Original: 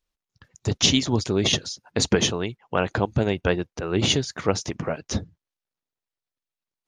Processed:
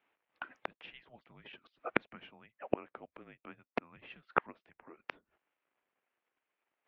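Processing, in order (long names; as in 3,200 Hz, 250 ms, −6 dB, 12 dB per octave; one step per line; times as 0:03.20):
gate with flip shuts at −21 dBFS, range −37 dB
single-sideband voice off tune −240 Hz 560–2,900 Hz
level +13 dB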